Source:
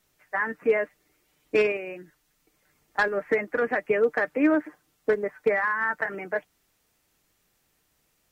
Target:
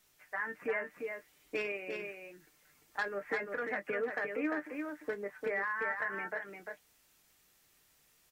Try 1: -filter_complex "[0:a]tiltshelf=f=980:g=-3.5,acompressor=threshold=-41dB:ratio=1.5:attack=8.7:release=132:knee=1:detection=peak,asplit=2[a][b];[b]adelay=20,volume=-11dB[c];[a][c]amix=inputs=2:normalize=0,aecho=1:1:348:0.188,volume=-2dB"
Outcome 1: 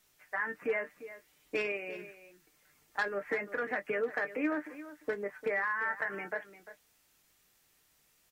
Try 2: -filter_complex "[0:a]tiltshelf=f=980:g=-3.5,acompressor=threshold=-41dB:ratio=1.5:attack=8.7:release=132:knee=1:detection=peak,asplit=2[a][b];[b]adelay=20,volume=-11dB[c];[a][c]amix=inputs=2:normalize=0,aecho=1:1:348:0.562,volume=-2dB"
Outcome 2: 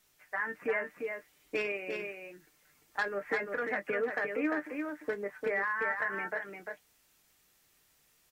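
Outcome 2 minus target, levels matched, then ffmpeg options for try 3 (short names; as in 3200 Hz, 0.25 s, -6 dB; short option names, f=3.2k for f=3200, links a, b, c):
compressor: peak gain reduction -3 dB
-filter_complex "[0:a]tiltshelf=f=980:g=-3.5,acompressor=threshold=-49.5dB:ratio=1.5:attack=8.7:release=132:knee=1:detection=peak,asplit=2[a][b];[b]adelay=20,volume=-11dB[c];[a][c]amix=inputs=2:normalize=0,aecho=1:1:348:0.562,volume=-2dB"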